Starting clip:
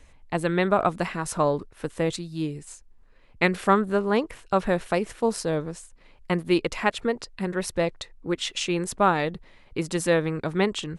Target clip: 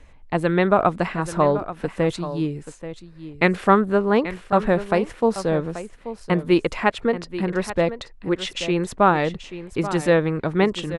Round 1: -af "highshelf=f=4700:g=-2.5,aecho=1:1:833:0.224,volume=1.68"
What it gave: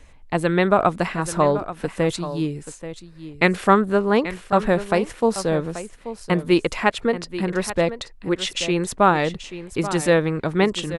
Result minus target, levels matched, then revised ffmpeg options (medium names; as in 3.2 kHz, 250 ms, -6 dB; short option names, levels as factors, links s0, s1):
8 kHz band +6.5 dB
-af "highshelf=f=4700:g=-12,aecho=1:1:833:0.224,volume=1.68"